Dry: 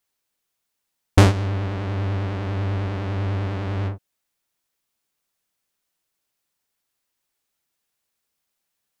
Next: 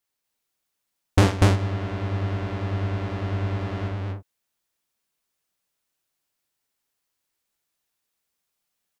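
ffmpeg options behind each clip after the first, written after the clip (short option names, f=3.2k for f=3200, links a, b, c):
-af "aecho=1:1:46.65|242:0.355|0.891,volume=-4dB"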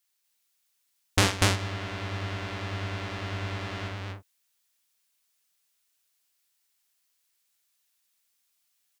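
-af "tiltshelf=f=1.2k:g=-7.5,volume=-1dB"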